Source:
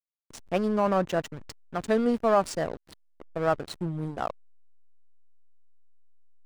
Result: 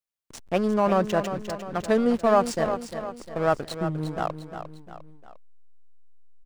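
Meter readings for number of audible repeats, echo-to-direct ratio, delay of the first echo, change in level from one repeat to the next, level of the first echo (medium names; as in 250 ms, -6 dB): 3, -8.5 dB, 352 ms, -6.5 dB, -9.5 dB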